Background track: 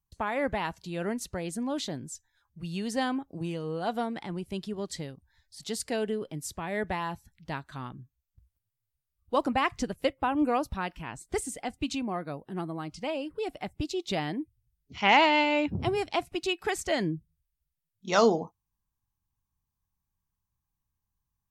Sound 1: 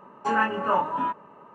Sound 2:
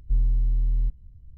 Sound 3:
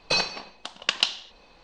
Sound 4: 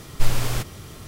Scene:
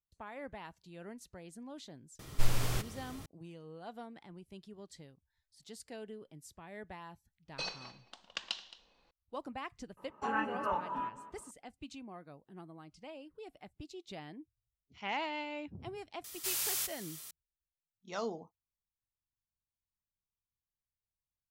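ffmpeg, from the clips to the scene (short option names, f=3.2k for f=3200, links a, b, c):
-filter_complex "[4:a]asplit=2[a][b];[0:a]volume=-16dB[c];[3:a]aecho=1:1:219:0.133[d];[1:a]asplit=2[e][f];[f]adelay=204.1,volume=-14dB,highshelf=f=4k:g=-4.59[g];[e][g]amix=inputs=2:normalize=0[h];[b]aderivative[i];[a]atrim=end=1.07,asetpts=PTS-STARTPTS,volume=-8.5dB,afade=t=in:d=0.004:c=hsin,afade=t=out:st=1.066:d=0.004:c=hsin,adelay=2190[j];[d]atrim=end=1.63,asetpts=PTS-STARTPTS,volume=-16dB,afade=t=in:d=0.004:c=hsin,afade=t=out:st=1.626:d=0.004:c=hsin,adelay=7480[k];[h]atrim=end=1.54,asetpts=PTS-STARTPTS,volume=-11dB,afade=t=in:d=0.004:c=hsin,afade=t=out:st=1.536:d=0.004:c=hsin,adelay=9970[l];[i]atrim=end=1.07,asetpts=PTS-STARTPTS,afade=t=in:d=0.004:c=hsin,afade=t=out:st=1.066:d=0.004:c=hsin,adelay=16240[m];[c][j][k][l][m]amix=inputs=5:normalize=0"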